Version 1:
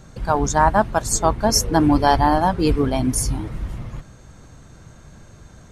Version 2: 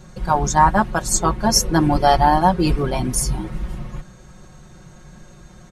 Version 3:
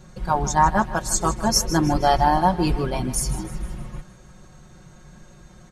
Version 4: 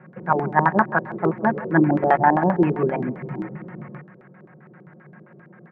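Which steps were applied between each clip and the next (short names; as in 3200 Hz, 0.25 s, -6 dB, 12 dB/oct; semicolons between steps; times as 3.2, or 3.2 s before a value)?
comb 5.5 ms, depth 89%; gain -1 dB
thinning echo 0.156 s, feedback 49%, level -14 dB; gain -3.5 dB
elliptic band-pass 150–2300 Hz, stop band 40 dB; LFO low-pass square 7.6 Hz 420–1800 Hz; gain +1.5 dB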